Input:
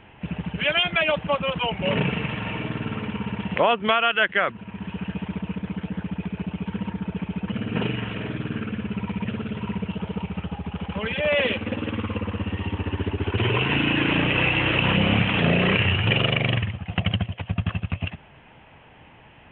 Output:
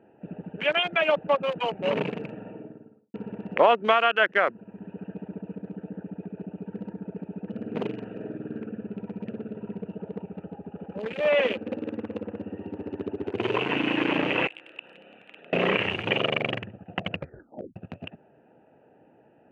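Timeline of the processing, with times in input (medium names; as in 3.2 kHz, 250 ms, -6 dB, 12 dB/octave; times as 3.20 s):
2.13–3.14 s: studio fade out
14.47–15.53 s: differentiator
17.08 s: tape stop 0.68 s
whole clip: local Wiener filter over 41 samples; high-pass 350 Hz 12 dB/octave; treble shelf 2.3 kHz -11.5 dB; trim +3.5 dB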